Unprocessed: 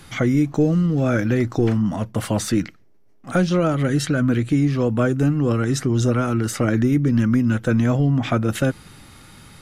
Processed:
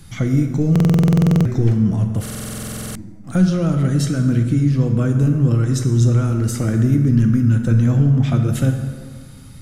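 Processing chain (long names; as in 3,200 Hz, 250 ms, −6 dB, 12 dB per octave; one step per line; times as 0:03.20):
bass and treble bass +14 dB, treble +8 dB
dense smooth reverb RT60 1.8 s, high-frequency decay 0.6×, DRR 4 dB
buffer that repeats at 0:00.71/0:02.21, samples 2,048, times 15
level −7.5 dB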